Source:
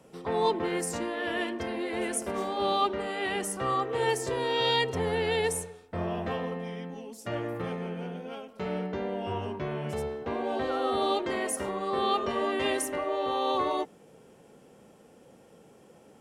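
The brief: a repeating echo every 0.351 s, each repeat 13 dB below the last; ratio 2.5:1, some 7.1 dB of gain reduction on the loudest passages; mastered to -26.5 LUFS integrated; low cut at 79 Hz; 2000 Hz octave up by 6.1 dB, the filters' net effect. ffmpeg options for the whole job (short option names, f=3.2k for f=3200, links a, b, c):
-af "highpass=79,equalizer=f=2k:t=o:g=7,acompressor=threshold=-31dB:ratio=2.5,aecho=1:1:351|702|1053:0.224|0.0493|0.0108,volume=6.5dB"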